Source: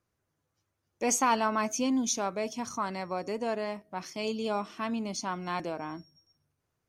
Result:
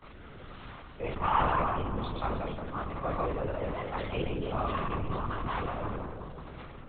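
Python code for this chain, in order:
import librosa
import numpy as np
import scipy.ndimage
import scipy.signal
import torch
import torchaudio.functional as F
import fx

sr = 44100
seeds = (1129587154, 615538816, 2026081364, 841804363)

p1 = x + 0.5 * 10.0 ** (-38.0 / 20.0) * np.sign(x)
p2 = fx.peak_eq(p1, sr, hz=1200.0, db=8.5, octaves=0.35)
p3 = fx.room_flutter(p2, sr, wall_m=5.6, rt60_s=0.27)
p4 = fx.rider(p3, sr, range_db=4, speed_s=0.5)
p5 = p3 + (p4 * librosa.db_to_amplitude(-2.0))
p6 = fx.granulator(p5, sr, seeds[0], grain_ms=100.0, per_s=20.0, spray_ms=100.0, spread_st=0)
p7 = fx.rotary(p6, sr, hz=1.2)
p8 = p7 + fx.echo_filtered(p7, sr, ms=182, feedback_pct=73, hz=2000.0, wet_db=-7.5, dry=0)
p9 = fx.lpc_vocoder(p8, sr, seeds[1], excitation='whisper', order=10)
p10 = fx.sustainer(p9, sr, db_per_s=30.0)
y = p10 * librosa.db_to_amplitude(-7.5)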